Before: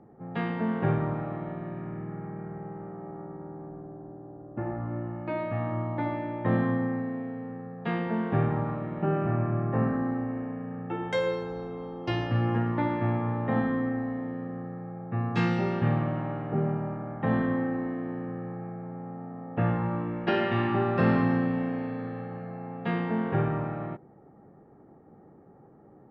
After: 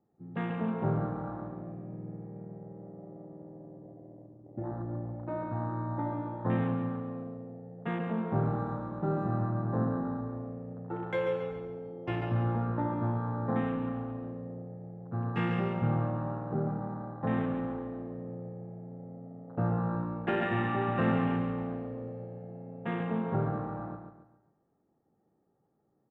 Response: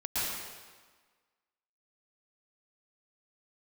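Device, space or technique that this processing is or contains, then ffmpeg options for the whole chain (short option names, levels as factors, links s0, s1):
keyed gated reverb: -filter_complex "[0:a]afwtdn=0.0178,asettb=1/sr,asplit=3[s0][s1][s2];[s0]atrim=end=8.454[s3];[s1]atrim=start=8.45:end=9.46,asetpts=PTS-STARTPTS,afade=t=in:d=0.004:c=qsin,afade=t=out:st=1.006:d=0.004:c=qsin,bass=f=250:g=0,treble=f=4000:g=11[s4];[s2]atrim=start=9.456[s5];[s3][s4]acrossfade=d=0.004:c1=hsin:c2=qsin[s6];[s6][s5]acrossfade=d=0.004:c1=qsin:c2=hsin,asplit=3[s7][s8][s9];[1:a]atrim=start_sample=2205[s10];[s8][s10]afir=irnorm=-1:irlink=0[s11];[s9]apad=whole_len=1151306[s12];[s11][s12]sidechaingate=range=0.178:threshold=0.0178:ratio=16:detection=peak,volume=0.168[s13];[s7][s13]amix=inputs=2:normalize=0,aecho=1:1:139|278|417|556:0.447|0.165|0.0612|0.0226,volume=0.562"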